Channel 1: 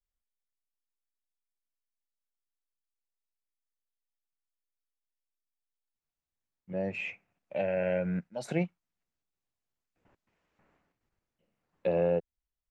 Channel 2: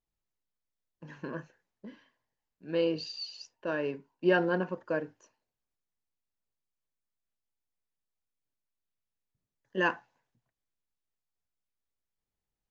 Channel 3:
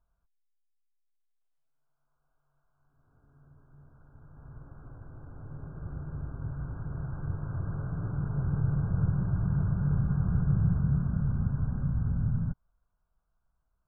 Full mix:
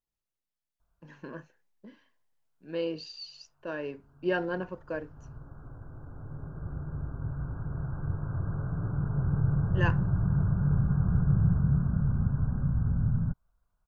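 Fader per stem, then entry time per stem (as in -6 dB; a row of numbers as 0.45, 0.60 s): off, -3.5 dB, +1.5 dB; off, 0.00 s, 0.80 s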